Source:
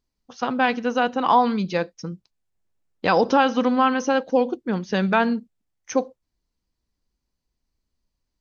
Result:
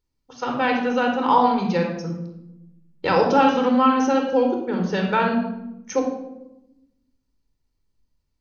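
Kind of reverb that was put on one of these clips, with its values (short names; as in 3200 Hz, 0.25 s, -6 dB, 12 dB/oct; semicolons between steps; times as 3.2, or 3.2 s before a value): shoebox room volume 3200 m³, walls furnished, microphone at 4.4 m; gain -3.5 dB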